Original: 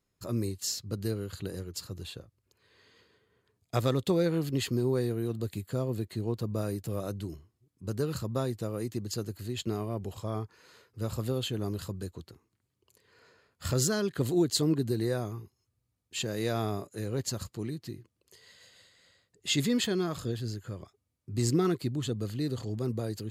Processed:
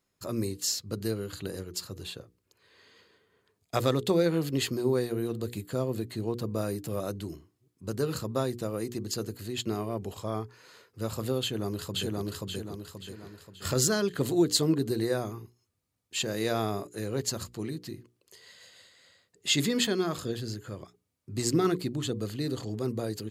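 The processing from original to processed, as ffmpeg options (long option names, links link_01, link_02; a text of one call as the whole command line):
ffmpeg -i in.wav -filter_complex "[0:a]asplit=2[link_01][link_02];[link_02]afade=type=in:start_time=11.41:duration=0.01,afade=type=out:start_time=12.25:duration=0.01,aecho=0:1:530|1060|1590|2120|2650|3180:0.944061|0.424827|0.191172|0.0860275|0.0387124|0.0174206[link_03];[link_01][link_03]amix=inputs=2:normalize=0,lowshelf=frequency=120:gain=-9,bandreject=frequency=60:width_type=h:width=6,bandreject=frequency=120:width_type=h:width=6,bandreject=frequency=180:width_type=h:width=6,bandreject=frequency=240:width_type=h:width=6,bandreject=frequency=300:width_type=h:width=6,bandreject=frequency=360:width_type=h:width=6,bandreject=frequency=420:width_type=h:width=6,bandreject=frequency=480:width_type=h:width=6,volume=3.5dB" out.wav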